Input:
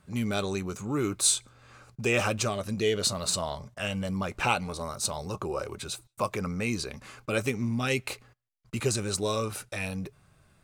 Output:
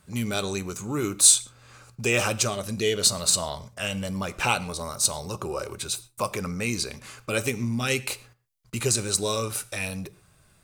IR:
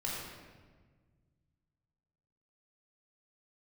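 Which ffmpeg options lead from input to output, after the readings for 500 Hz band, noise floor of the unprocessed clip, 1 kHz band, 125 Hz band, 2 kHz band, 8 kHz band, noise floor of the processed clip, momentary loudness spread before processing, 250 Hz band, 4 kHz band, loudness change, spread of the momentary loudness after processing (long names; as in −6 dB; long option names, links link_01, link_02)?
+1.5 dB, −63 dBFS, +1.5 dB, +1.5 dB, +3.0 dB, +8.5 dB, −60 dBFS, 10 LU, +0.5 dB, +5.5 dB, +5.0 dB, 12 LU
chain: -filter_complex "[0:a]highshelf=frequency=4200:gain=9.5,asplit=2[link_01][link_02];[1:a]atrim=start_sample=2205,atrim=end_sample=6174[link_03];[link_02][link_03]afir=irnorm=-1:irlink=0,volume=-16.5dB[link_04];[link_01][link_04]amix=inputs=2:normalize=0"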